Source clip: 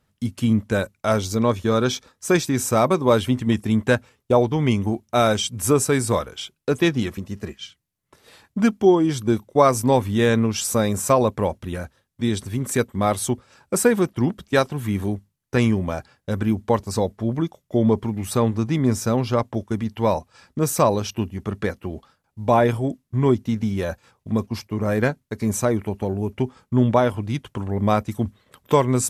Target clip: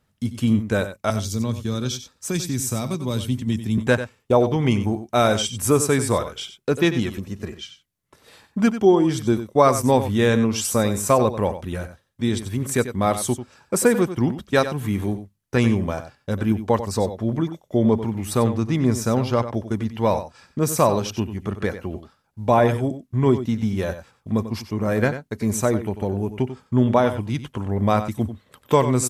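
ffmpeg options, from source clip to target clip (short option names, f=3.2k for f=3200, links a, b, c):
-filter_complex "[0:a]asettb=1/sr,asplit=3[a][b][c];[a]atrim=end=1.104[d];[b]atrim=start=1.1:end=3.78,asetpts=PTS-STARTPTS,afade=t=in:d=0.004:c=qsin,afade=t=out:st=2.676:d=0.004:c=qsin,acrossover=split=240|3000[e][f][g];[f]acompressor=threshold=-44dB:ratio=2[h];[e][h][g]amix=inputs=3:normalize=0[i];[c]atrim=start=3.776[j];[d][i]acrossfade=d=0.004:c1=hsin:c2=qsin[k];[k][j]acrossfade=d=0.004:c1=qsin:c2=hsin,aecho=1:1:93:0.266"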